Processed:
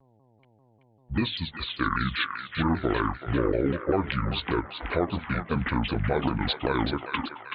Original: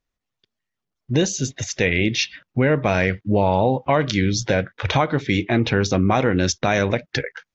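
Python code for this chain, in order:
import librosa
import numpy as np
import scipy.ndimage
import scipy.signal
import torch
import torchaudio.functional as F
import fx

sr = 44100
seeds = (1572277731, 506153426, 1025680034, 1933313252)

p1 = fx.pitch_heads(x, sr, semitones=-9.0)
p2 = fx.peak_eq(p1, sr, hz=72.0, db=-5.0, octaves=2.5)
p3 = fx.dmg_buzz(p2, sr, base_hz=120.0, harmonics=8, level_db=-57.0, tilt_db=-4, odd_only=False)
p4 = p3 + fx.echo_banded(p3, sr, ms=379, feedback_pct=68, hz=1900.0, wet_db=-5.5, dry=0)
p5 = fx.vibrato_shape(p4, sr, shape='saw_down', rate_hz=5.1, depth_cents=250.0)
y = p5 * 10.0 ** (-4.5 / 20.0)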